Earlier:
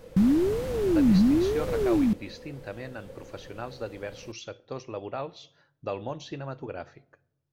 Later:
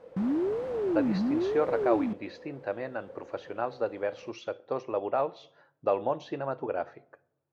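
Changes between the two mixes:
speech +7.5 dB; master: add band-pass filter 720 Hz, Q 0.83

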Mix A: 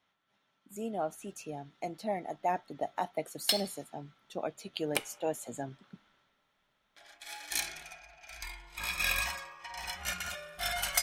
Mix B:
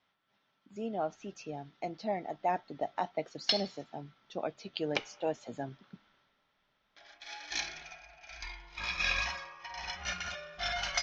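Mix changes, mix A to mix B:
speech: remove band-stop 4.9 kHz, Q 18; master: add steep low-pass 6.2 kHz 72 dB/octave

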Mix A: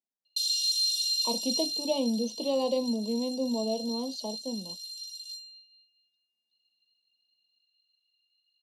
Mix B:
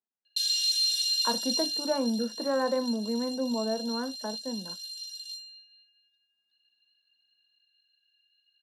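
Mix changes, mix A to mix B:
speech: add Gaussian low-pass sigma 5.5 samples; master: remove Butterworth band-stop 1.6 kHz, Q 0.62

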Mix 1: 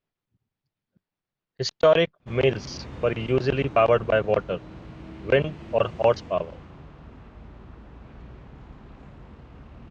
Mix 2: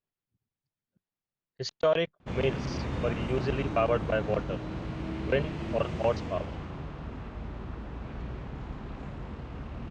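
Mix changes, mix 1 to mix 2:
speech -7.5 dB; background +6.0 dB

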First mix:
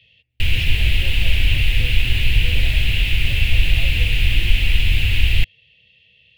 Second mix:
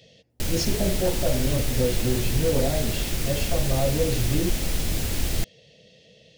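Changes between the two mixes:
background -11.0 dB; master: remove FFT filter 100 Hz 0 dB, 160 Hz -13 dB, 280 Hz -17 dB, 600 Hz -19 dB, 880 Hz -16 dB, 1.3 kHz -15 dB, 2.7 kHz +9 dB, 5.8 kHz -22 dB, 13 kHz -18 dB

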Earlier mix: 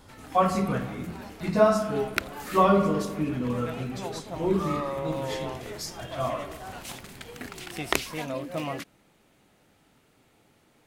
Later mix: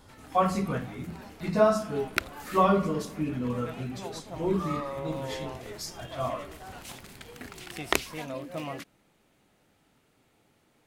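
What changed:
speech: send -11.0 dB; first sound -4.0 dB

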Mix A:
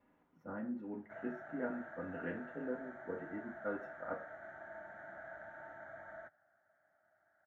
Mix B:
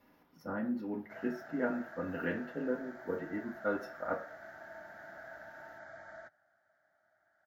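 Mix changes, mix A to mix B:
speech +6.0 dB; master: remove boxcar filter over 9 samples

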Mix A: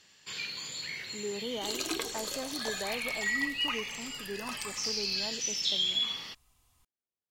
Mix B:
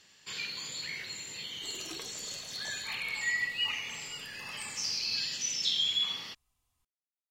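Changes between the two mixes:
speech: muted; second sound -10.5 dB

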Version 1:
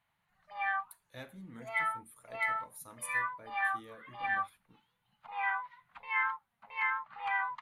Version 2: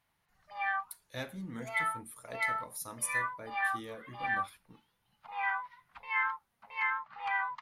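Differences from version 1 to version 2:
speech +7.0 dB; master: add peaking EQ 5.3 kHz +9.5 dB 0.42 oct

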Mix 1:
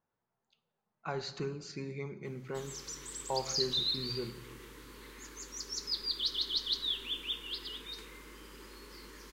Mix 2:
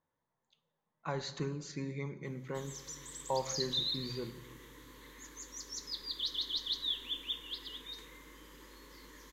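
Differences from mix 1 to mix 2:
background -4.0 dB; master: add rippled EQ curve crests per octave 1.1, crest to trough 7 dB

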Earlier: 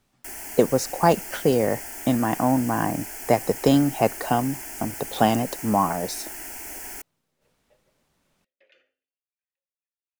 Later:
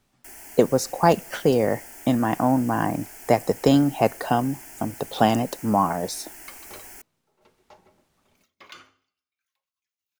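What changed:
first sound -6.5 dB; second sound: remove vowel filter e; reverb: on, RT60 0.75 s

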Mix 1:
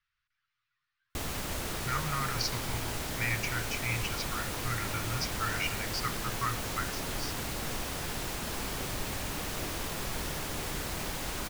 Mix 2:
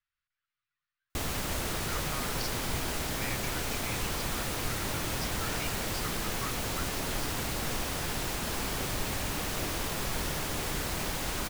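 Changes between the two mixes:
speech -7.5 dB; background: send +11.5 dB

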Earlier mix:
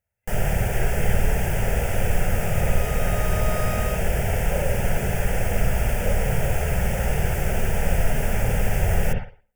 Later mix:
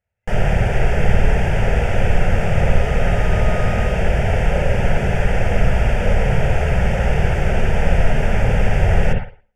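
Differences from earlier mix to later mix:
speech: send +11.5 dB; first sound +6.0 dB; master: add low-pass 4.1 kHz 12 dB/octave

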